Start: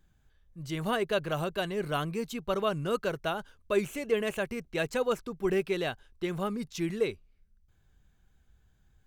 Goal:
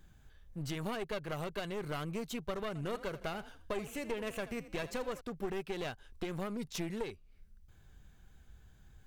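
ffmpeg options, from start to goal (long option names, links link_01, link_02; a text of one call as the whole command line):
ffmpeg -i in.wav -filter_complex "[0:a]acompressor=threshold=-42dB:ratio=4,aeval=exprs='clip(val(0),-1,0.00398)':channel_layout=same,asettb=1/sr,asplit=3[link_01][link_02][link_03];[link_01]atrim=end=2.674[link_04];[link_02]atrim=start=2.67:end=5.21,asetpts=PTS-STARTPTS,afade=type=in:duration=0.004:curve=qsin,afade=type=out:start_time=2.536:duration=0.004:curve=qsin,asplit=4[link_05][link_06][link_07][link_08];[link_06]adelay=81,afreqshift=36,volume=-15dB[link_09];[link_07]adelay=162,afreqshift=72,volume=-23.6dB[link_10];[link_08]adelay=243,afreqshift=108,volume=-32.3dB[link_11];[link_05][link_09][link_10][link_11]amix=inputs=4:normalize=0,atrim=end_sample=112014[link_12];[link_03]atrim=start=5.206[link_13];[link_04][link_12]acrossfade=duration=0.004:curve1=hsin:curve2=qsin[link_14];[link_14][link_13]acrossfade=duration=0.004:curve1=qsin:curve2=hsin,volume=6.5dB" out.wav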